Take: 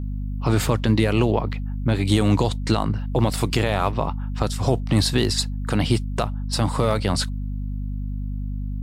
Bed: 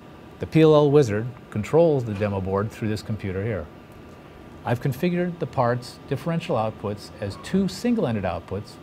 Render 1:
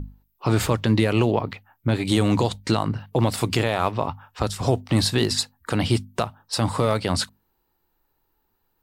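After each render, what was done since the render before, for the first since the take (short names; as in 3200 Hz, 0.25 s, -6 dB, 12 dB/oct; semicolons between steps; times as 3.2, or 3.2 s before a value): notches 50/100/150/200/250 Hz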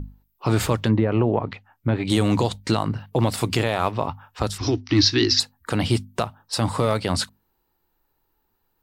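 0.87–2.1 treble ducked by the level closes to 1300 Hz, closed at -15 dBFS; 4.58–5.4 EQ curve 110 Hz 0 dB, 180 Hz -15 dB, 310 Hz +10 dB, 540 Hz -15 dB, 1300 Hz -1 dB, 2000 Hz +4 dB, 3500 Hz +2 dB, 5800 Hz +10 dB, 8200 Hz -25 dB, 12000 Hz -29 dB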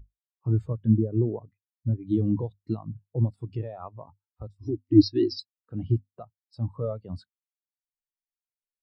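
upward compressor, threshold -40 dBFS; spectral expander 2.5:1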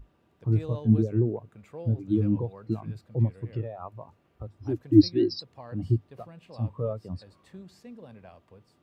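add bed -23.5 dB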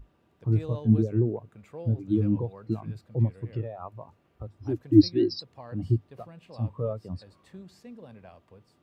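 nothing audible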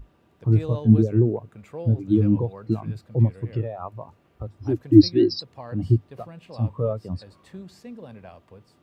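gain +5.5 dB; limiter -2 dBFS, peak gain reduction 2 dB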